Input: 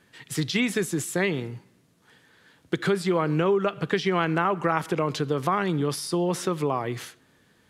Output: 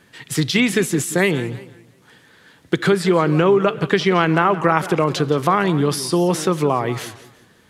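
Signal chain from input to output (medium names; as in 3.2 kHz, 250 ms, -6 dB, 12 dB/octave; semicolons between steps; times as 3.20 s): modulated delay 176 ms, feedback 33%, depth 218 cents, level -15.5 dB; trim +7.5 dB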